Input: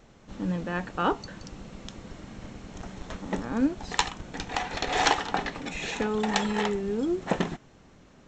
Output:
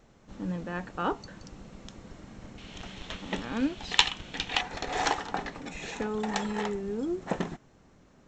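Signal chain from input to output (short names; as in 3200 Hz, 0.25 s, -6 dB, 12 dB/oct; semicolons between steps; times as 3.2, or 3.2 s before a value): bell 3100 Hz -2 dB 1.2 oct, from 2.58 s +14 dB, from 4.61 s -3.5 dB; gain -4 dB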